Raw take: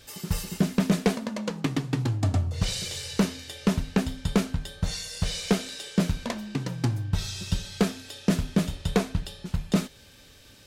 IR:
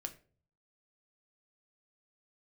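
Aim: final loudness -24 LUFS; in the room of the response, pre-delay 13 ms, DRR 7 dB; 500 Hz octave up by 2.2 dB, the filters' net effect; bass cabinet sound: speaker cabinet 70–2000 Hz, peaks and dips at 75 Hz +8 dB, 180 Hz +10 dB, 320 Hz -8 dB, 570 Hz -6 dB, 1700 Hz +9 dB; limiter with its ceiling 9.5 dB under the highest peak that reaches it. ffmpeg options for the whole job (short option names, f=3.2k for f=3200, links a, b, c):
-filter_complex "[0:a]equalizer=f=500:t=o:g=6,alimiter=limit=-17dB:level=0:latency=1,asplit=2[a][b];[1:a]atrim=start_sample=2205,adelay=13[c];[b][c]afir=irnorm=-1:irlink=0,volume=-5dB[d];[a][d]amix=inputs=2:normalize=0,highpass=f=70:w=0.5412,highpass=f=70:w=1.3066,equalizer=f=75:t=q:w=4:g=8,equalizer=f=180:t=q:w=4:g=10,equalizer=f=320:t=q:w=4:g=-8,equalizer=f=570:t=q:w=4:g=-6,equalizer=f=1.7k:t=q:w=4:g=9,lowpass=f=2k:w=0.5412,lowpass=f=2k:w=1.3066,volume=4dB"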